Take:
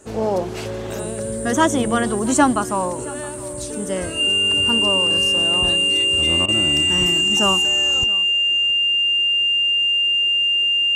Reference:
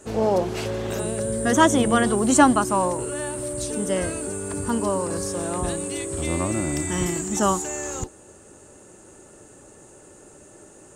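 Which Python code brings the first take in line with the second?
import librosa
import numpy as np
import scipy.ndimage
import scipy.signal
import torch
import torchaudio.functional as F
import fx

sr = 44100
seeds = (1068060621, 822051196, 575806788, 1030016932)

y = fx.notch(x, sr, hz=2800.0, q=30.0)
y = fx.fix_interpolate(y, sr, at_s=(6.46,), length_ms=22.0)
y = fx.fix_echo_inverse(y, sr, delay_ms=669, level_db=-20.0)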